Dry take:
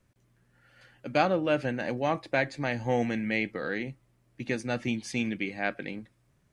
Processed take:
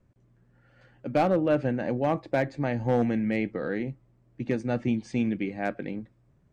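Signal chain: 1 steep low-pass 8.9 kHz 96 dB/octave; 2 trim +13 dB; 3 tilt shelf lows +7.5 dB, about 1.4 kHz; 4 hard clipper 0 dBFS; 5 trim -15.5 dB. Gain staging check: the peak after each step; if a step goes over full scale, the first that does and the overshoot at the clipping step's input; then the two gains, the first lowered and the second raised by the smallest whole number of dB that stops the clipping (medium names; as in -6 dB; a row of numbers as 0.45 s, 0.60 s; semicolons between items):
-8.5 dBFS, +4.5 dBFS, +6.0 dBFS, 0.0 dBFS, -15.5 dBFS; step 2, 6.0 dB; step 2 +7 dB, step 5 -9.5 dB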